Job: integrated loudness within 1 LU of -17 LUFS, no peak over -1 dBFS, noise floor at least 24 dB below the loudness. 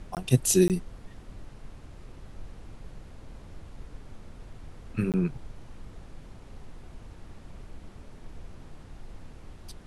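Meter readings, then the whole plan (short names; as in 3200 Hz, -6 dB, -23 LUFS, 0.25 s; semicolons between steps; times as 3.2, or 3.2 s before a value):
dropouts 3; longest dropout 18 ms; noise floor -49 dBFS; noise floor target -50 dBFS; loudness -26.0 LUFS; peak -6.5 dBFS; loudness target -17.0 LUFS
-> interpolate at 0.15/0.68/5.12, 18 ms; noise print and reduce 6 dB; gain +9 dB; limiter -1 dBFS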